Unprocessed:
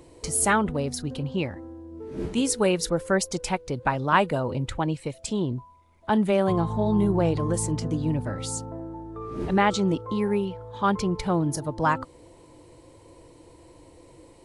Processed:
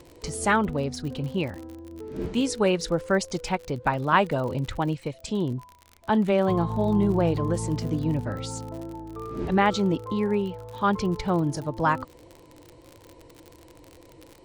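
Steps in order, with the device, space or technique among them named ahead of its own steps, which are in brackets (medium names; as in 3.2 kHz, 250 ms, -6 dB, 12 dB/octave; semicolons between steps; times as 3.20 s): lo-fi chain (low-pass 5.8 kHz 12 dB/octave; wow and flutter 20 cents; crackle 51 per s -34 dBFS)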